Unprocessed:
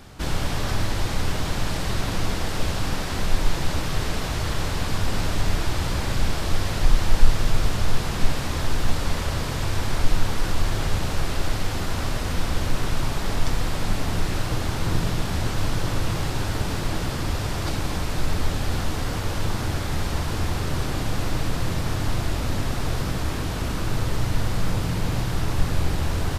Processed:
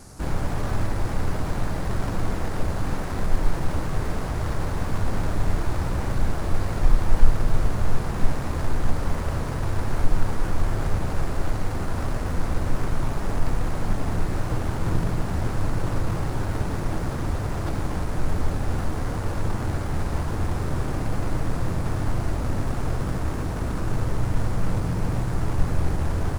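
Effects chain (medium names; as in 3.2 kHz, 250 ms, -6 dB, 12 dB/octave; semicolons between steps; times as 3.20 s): median filter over 15 samples; band noise 4.4–11 kHz -53 dBFS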